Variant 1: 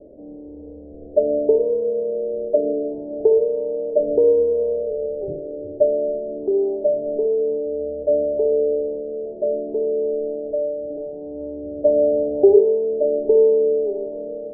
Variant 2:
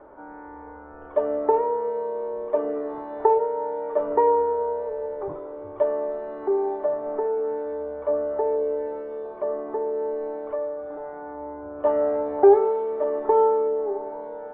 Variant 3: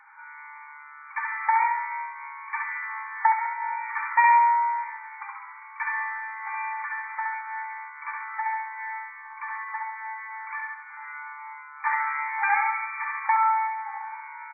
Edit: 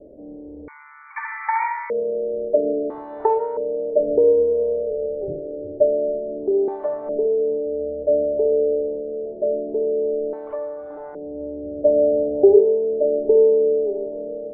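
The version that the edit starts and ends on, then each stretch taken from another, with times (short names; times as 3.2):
1
0.68–1.9 from 3
2.9–3.57 from 2
6.68–7.09 from 2
10.33–11.15 from 2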